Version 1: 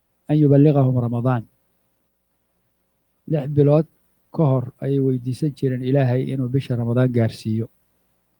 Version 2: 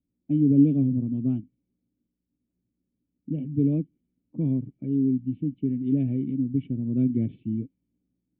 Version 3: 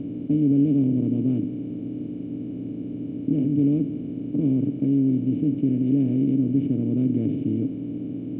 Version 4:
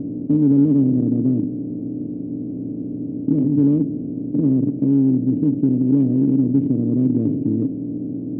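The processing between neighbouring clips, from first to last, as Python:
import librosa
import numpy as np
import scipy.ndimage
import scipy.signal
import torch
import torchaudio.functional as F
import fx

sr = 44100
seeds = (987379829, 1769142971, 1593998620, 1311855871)

y1 = fx.formant_cascade(x, sr, vowel='i')
y1 = fx.env_lowpass(y1, sr, base_hz=1400.0, full_db=-20.5)
y1 = fx.low_shelf(y1, sr, hz=470.0, db=8.0)
y1 = y1 * 10.0 ** (-5.5 / 20.0)
y2 = fx.bin_compress(y1, sr, power=0.2)
y2 = y2 * 10.0 ** (-4.0 / 20.0)
y3 = fx.wiener(y2, sr, points=25)
y3 = fx.lowpass(y3, sr, hz=1200.0, slope=6)
y3 = fx.low_shelf(y3, sr, hz=160.0, db=-3.5)
y3 = y3 * 10.0 ** (6.0 / 20.0)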